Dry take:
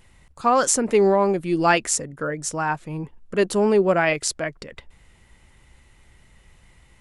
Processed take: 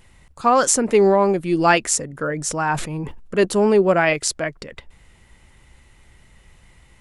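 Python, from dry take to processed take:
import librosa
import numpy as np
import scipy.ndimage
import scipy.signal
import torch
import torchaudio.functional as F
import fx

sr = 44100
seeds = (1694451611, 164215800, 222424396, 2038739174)

y = fx.sustainer(x, sr, db_per_s=67.0, at=(2.1, 3.45))
y = y * librosa.db_to_amplitude(2.5)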